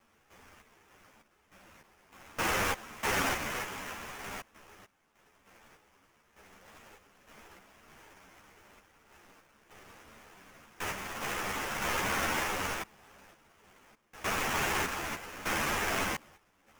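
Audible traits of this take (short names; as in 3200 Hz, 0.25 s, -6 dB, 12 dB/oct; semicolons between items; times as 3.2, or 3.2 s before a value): a quantiser's noise floor 10-bit, dither triangular; random-step tremolo 3.3 Hz, depth 90%; aliases and images of a low sample rate 4200 Hz, jitter 20%; a shimmering, thickened sound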